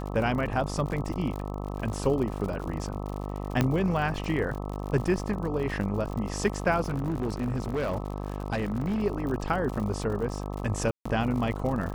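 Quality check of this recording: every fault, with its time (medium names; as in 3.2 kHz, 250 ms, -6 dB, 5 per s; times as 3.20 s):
buzz 50 Hz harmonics 26 -34 dBFS
crackle 83 per s -34 dBFS
3.61 s: pop -10 dBFS
6.81–9.03 s: clipped -24.5 dBFS
10.91–11.05 s: dropout 145 ms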